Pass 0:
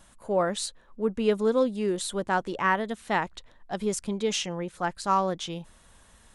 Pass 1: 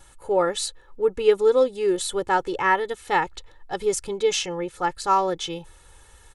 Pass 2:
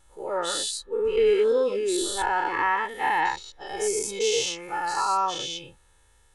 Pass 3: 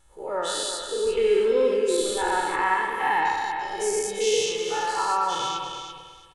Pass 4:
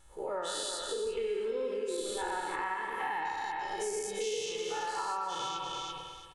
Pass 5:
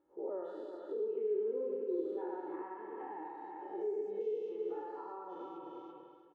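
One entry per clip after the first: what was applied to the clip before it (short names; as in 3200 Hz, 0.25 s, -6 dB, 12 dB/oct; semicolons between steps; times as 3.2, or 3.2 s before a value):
comb 2.3 ms, depth 83%; gain +2 dB
spectral dilation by 0.24 s; spectral noise reduction 8 dB; gain -7.5 dB
on a send: feedback echo 0.338 s, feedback 22%, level -8 dB; on the sum: spring tank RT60 1.5 s, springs 54 ms, chirp 55 ms, DRR 4.5 dB; gain -1 dB
compressor 4:1, threshold -34 dBFS, peak gain reduction 14.5 dB
flange 1.1 Hz, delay 3 ms, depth 7.4 ms, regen -52%; ladder band-pass 360 Hz, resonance 60%; gain +11 dB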